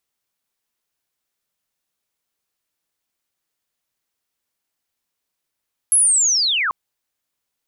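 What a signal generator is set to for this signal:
glide linear 11,000 Hz → 1,000 Hz −10.5 dBFS → −17.5 dBFS 0.79 s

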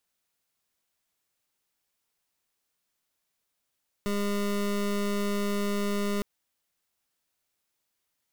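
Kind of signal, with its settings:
pulse wave 203 Hz, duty 25% −28 dBFS 2.16 s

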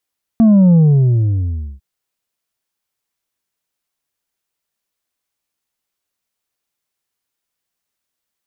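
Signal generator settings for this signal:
bass drop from 230 Hz, over 1.40 s, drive 4 dB, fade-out 1.06 s, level −6.5 dB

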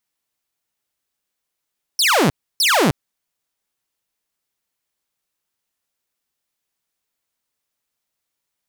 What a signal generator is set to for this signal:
repeated falling chirps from 5,700 Hz, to 120 Hz, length 0.31 s saw, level −10 dB, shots 2, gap 0.30 s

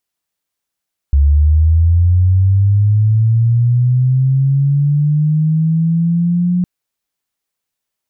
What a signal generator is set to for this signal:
glide linear 69 Hz → 180 Hz −6.5 dBFS → −11 dBFS 5.51 s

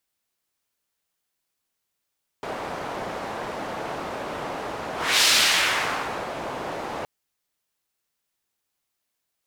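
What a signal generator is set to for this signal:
pass-by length 4.62 s, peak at 0:02.80, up 0.31 s, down 1.11 s, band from 710 Hz, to 4,000 Hz, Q 0.99, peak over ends 14 dB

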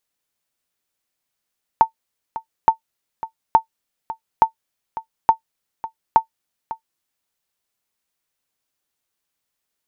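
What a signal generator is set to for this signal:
ping with an echo 899 Hz, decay 0.10 s, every 0.87 s, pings 6, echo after 0.55 s, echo −15.5 dB −2 dBFS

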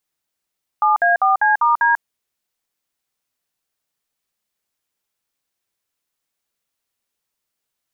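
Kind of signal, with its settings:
touch tones "7A4C*D", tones 142 ms, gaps 56 ms, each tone −14.5 dBFS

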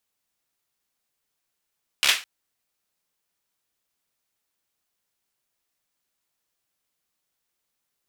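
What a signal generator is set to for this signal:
synth clap length 0.21 s, bursts 5, apart 14 ms, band 2,600 Hz, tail 0.29 s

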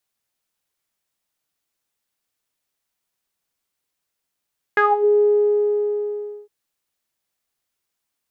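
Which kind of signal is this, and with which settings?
subtractive voice saw G#4 12 dB per octave, low-pass 460 Hz, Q 7.5, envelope 2 octaves, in 0.27 s, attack 2.2 ms, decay 0.20 s, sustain −7 dB, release 1.28 s, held 0.43 s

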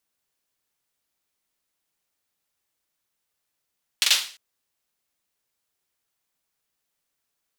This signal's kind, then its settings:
synth clap length 0.35 s, bursts 3, apart 43 ms, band 3,500 Hz, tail 0.41 s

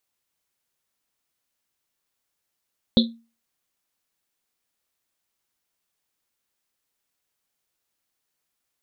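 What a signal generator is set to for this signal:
drum after Risset, pitch 230 Hz, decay 0.33 s, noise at 3,800 Hz, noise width 670 Hz, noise 35%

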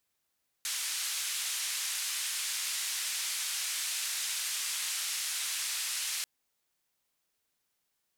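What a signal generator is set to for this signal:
band-limited noise 1,900–10,000 Hz, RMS −34.5 dBFS 5.59 s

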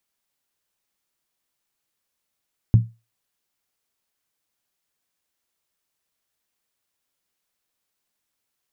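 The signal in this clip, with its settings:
struck skin, lowest mode 114 Hz, decay 0.26 s, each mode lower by 11 dB, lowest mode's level −6 dB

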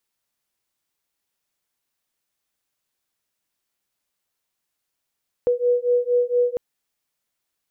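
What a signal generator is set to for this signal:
two tones that beat 486 Hz, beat 4.3 Hz, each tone −20 dBFS 1.10 s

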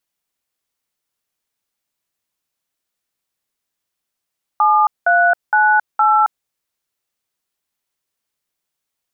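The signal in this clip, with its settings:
touch tones "7398", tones 270 ms, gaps 194 ms, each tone −12.5 dBFS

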